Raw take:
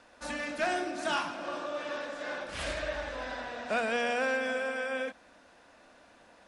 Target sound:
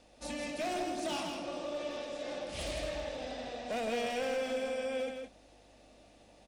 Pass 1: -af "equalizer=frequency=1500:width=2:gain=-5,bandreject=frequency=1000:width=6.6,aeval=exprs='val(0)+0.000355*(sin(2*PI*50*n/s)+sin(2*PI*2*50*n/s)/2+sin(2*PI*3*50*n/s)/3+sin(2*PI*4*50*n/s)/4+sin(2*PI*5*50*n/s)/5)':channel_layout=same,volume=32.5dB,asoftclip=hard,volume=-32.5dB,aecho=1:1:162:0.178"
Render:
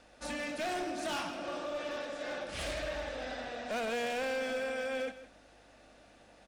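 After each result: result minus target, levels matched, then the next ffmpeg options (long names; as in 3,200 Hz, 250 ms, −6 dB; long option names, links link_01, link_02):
echo-to-direct −9.5 dB; 2,000 Hz band +4.0 dB
-af "equalizer=frequency=1500:width=2:gain=-5,bandreject=frequency=1000:width=6.6,aeval=exprs='val(0)+0.000355*(sin(2*PI*50*n/s)+sin(2*PI*2*50*n/s)/2+sin(2*PI*3*50*n/s)/3+sin(2*PI*4*50*n/s)/4+sin(2*PI*5*50*n/s)/5)':channel_layout=same,volume=32.5dB,asoftclip=hard,volume=-32.5dB,aecho=1:1:162:0.531"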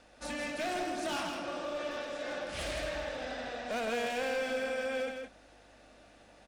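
2,000 Hz band +4.0 dB
-af "equalizer=frequency=1500:width=2:gain=-17,bandreject=frequency=1000:width=6.6,aeval=exprs='val(0)+0.000355*(sin(2*PI*50*n/s)+sin(2*PI*2*50*n/s)/2+sin(2*PI*3*50*n/s)/3+sin(2*PI*4*50*n/s)/4+sin(2*PI*5*50*n/s)/5)':channel_layout=same,volume=32.5dB,asoftclip=hard,volume=-32.5dB,aecho=1:1:162:0.531"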